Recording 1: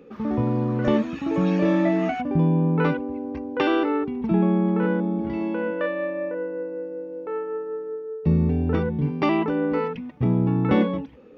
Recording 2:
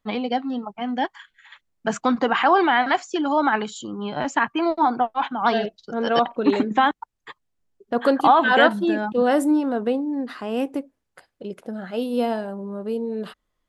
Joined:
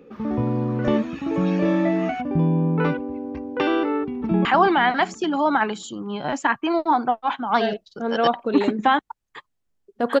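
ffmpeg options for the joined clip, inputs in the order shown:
-filter_complex "[0:a]apad=whole_dur=10.2,atrim=end=10.2,atrim=end=4.452[a];[1:a]atrim=start=2.368:end=8.12[b];[a][b]acrossfade=d=0.004:c1=hsin:c2=hsin,asplit=2[c][d];[d]afade=t=in:st=3.99:d=0.01,afade=t=out:st=4.45:d=0.01,aecho=0:1:230|460|690|920|1150|1380|1610|1840:0.266073|0.172947|0.112416|0.0730702|0.0474956|0.0308721|0.0200669|0.0130435[e];[c][e]amix=inputs=2:normalize=0"

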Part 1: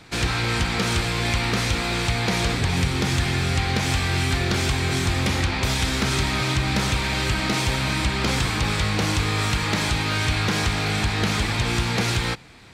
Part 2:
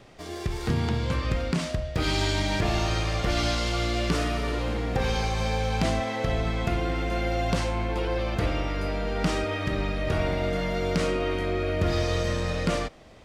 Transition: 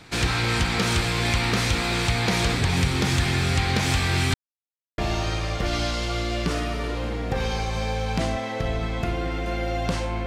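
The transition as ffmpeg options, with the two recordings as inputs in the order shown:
-filter_complex "[0:a]apad=whole_dur=10.26,atrim=end=10.26,asplit=2[a][b];[a]atrim=end=4.34,asetpts=PTS-STARTPTS,afade=t=out:st=4.336:d=0.004:c=hsin[c];[b]atrim=start=4.34:end=4.98,asetpts=PTS-STARTPTS,volume=0[d];[1:a]atrim=start=2.62:end=7.9,asetpts=PTS-STARTPTS,afade=t=in:d=0.004:c=hsin[e];[c][d][e]concat=n=3:v=0:a=1"

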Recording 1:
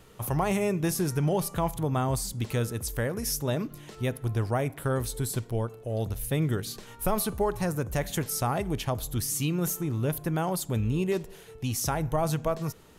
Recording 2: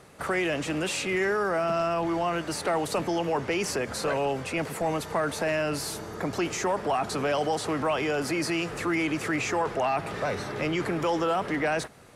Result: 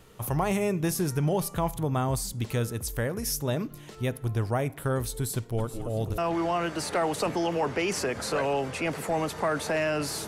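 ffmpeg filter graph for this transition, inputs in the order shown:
-filter_complex "[0:a]asplit=3[a][b][c];[a]afade=t=out:st=5.57:d=0.02[d];[b]asplit=6[e][f][g][h][i][j];[f]adelay=214,afreqshift=-130,volume=-7dB[k];[g]adelay=428,afreqshift=-260,volume=-13.9dB[l];[h]adelay=642,afreqshift=-390,volume=-20.9dB[m];[i]adelay=856,afreqshift=-520,volume=-27.8dB[n];[j]adelay=1070,afreqshift=-650,volume=-34.7dB[o];[e][k][l][m][n][o]amix=inputs=6:normalize=0,afade=t=in:st=5.57:d=0.02,afade=t=out:st=6.18:d=0.02[p];[c]afade=t=in:st=6.18:d=0.02[q];[d][p][q]amix=inputs=3:normalize=0,apad=whole_dur=10.27,atrim=end=10.27,atrim=end=6.182[r];[1:a]atrim=start=1.898:end=5.99[s];[r][s]acrossfade=d=0.004:c1=hsin:c2=hsin"

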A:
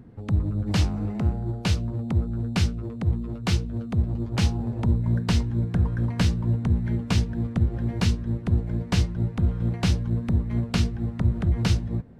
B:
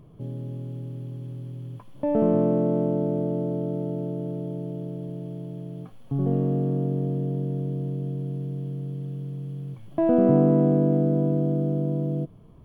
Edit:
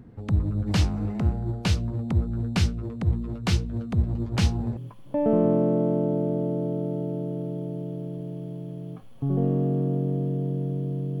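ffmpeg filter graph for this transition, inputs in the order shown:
-filter_complex "[0:a]apad=whole_dur=11.2,atrim=end=11.2,atrim=end=4.772[a];[1:a]atrim=start=1.658:end=8.09[b];[a][b]acrossfade=d=0.004:c1=hsin:c2=hsin"

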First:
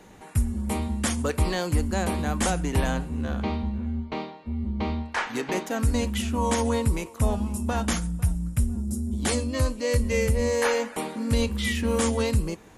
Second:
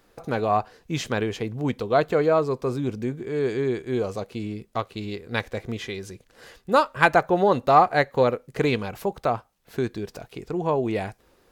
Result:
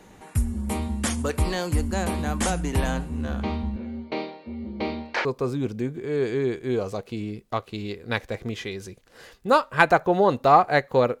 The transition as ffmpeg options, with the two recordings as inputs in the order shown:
-filter_complex "[0:a]asettb=1/sr,asplit=3[a][b][c];[a]atrim=end=3.764[d];[b]atrim=start=3.76:end=5.25,asetpts=PTS-STARTPTS,afade=t=in:d=0.004:c=qsin,afade=t=out:st=1.486:d=0.004:c=qsin,highpass=150,equalizer=f=210:t=q:w=4:g=-3,equalizer=f=340:t=q:w=4:g=6,equalizer=f=540:t=q:w=4:g=9,equalizer=f=1.1k:t=q:w=4:g=-4,equalizer=f=2.3k:t=q:w=4:g=5,equalizer=f=4.4k:t=q:w=4:g=6,lowpass=f=5.9k:w=0.5412,lowpass=f=5.9k:w=1.3066[e];[c]atrim=start=5.246[f];[d][e]acrossfade=d=0.004:c1=hsin:c2=qsin[g];[g][f]acrossfade=d=0.004:c1=qsin:c2=hsin,apad=whole_dur=11.2,atrim=end=11.2,atrim=end=5.252[h];[1:a]atrim=start=2.478:end=8.43[i];[h][i]acrossfade=d=0.004:c1=hsin:c2=hsin"

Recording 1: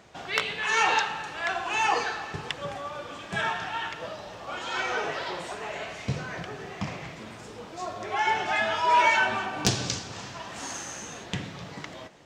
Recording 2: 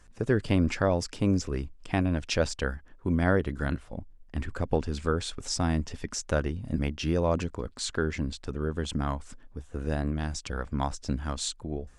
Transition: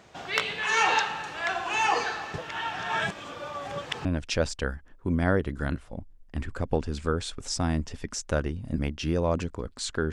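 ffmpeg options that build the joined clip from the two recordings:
-filter_complex "[0:a]apad=whole_dur=10.12,atrim=end=10.12,asplit=2[a][b];[a]atrim=end=2.382[c];[b]atrim=start=2.378:end=4.052,asetpts=PTS-STARTPTS,areverse[d];[1:a]atrim=start=2.048:end=8.12[e];[c][d]acrossfade=d=0.004:c1=hsin:c2=hsin[f];[f][e]acrossfade=d=0.004:c1=hsin:c2=hsin"

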